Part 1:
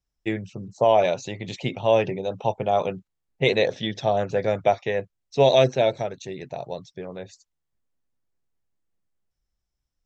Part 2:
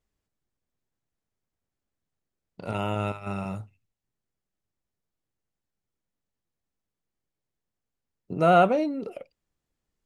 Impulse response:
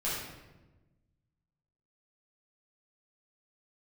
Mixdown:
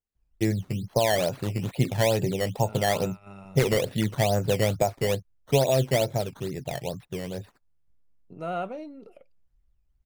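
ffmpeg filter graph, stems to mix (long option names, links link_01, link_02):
-filter_complex "[0:a]acompressor=threshold=-19dB:ratio=4,aemphasis=mode=reproduction:type=bsi,acrusher=samples=12:mix=1:aa=0.000001:lfo=1:lforange=12:lforate=2.3,adelay=150,volume=-1.5dB[link_01];[1:a]volume=-13dB[link_02];[link_01][link_02]amix=inputs=2:normalize=0"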